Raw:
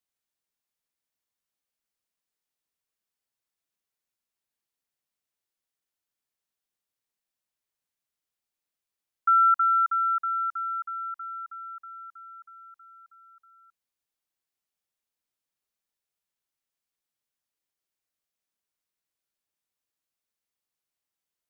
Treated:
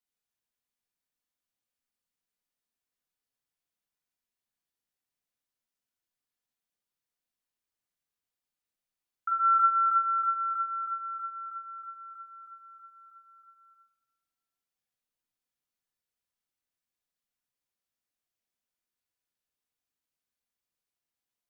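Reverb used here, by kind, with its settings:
rectangular room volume 1,300 cubic metres, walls mixed, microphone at 1.9 metres
level −5.5 dB

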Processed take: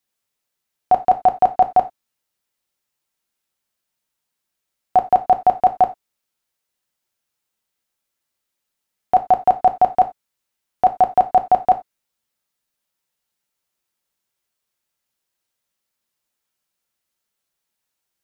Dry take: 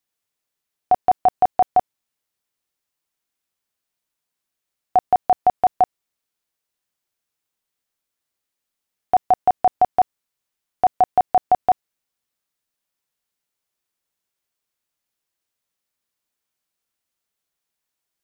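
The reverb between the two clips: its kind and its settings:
reverb whose tail is shaped and stops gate 110 ms falling, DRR 6.5 dB
level +1.5 dB

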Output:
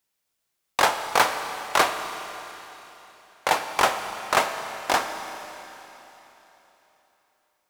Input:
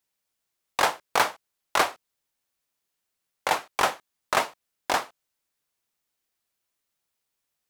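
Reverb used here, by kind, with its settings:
four-comb reverb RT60 3.6 s, combs from 28 ms, DRR 7 dB
level +2.5 dB

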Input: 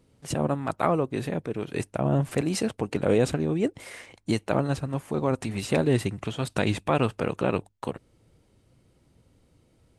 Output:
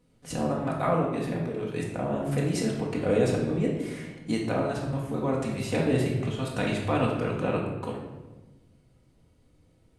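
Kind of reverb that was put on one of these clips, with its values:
rectangular room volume 630 cubic metres, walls mixed, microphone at 1.9 metres
level −6 dB

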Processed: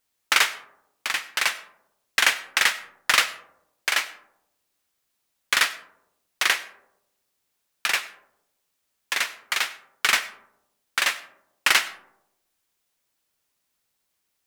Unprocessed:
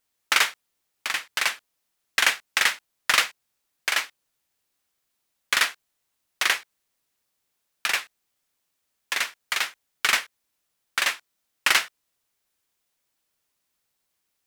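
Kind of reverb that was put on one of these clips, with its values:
comb and all-pass reverb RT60 0.87 s, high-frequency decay 0.3×, pre-delay 55 ms, DRR 16.5 dB
level +1 dB

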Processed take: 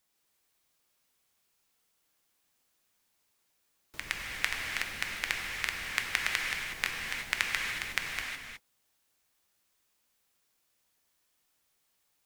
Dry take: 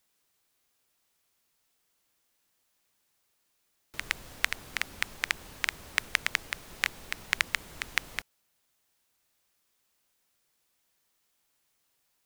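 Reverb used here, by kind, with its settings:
reverb whose tail is shaped and stops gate 390 ms flat, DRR −0.5 dB
level −3.5 dB

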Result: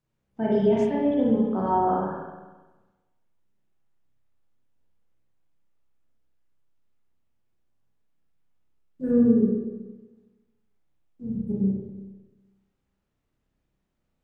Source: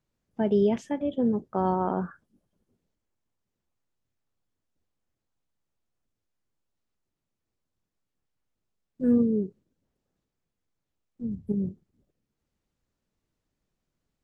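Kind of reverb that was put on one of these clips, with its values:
spring reverb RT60 1.2 s, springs 31/46 ms, chirp 65 ms, DRR −6 dB
level −3.5 dB

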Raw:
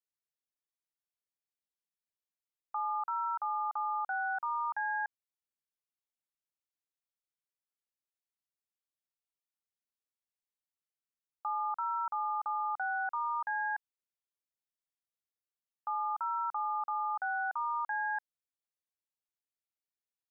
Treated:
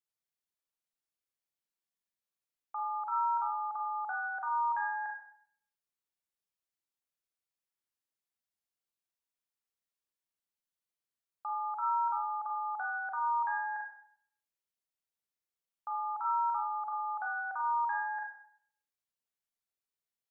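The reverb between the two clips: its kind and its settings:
four-comb reverb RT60 0.61 s, combs from 33 ms, DRR 0 dB
level −3 dB

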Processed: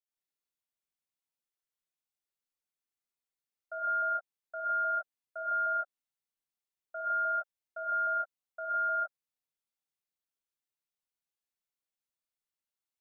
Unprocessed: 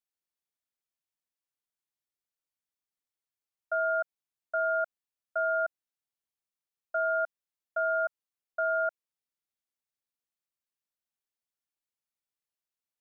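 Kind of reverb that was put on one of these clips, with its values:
reverb whose tail is shaped and stops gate 190 ms rising, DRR −7 dB
level −10.5 dB

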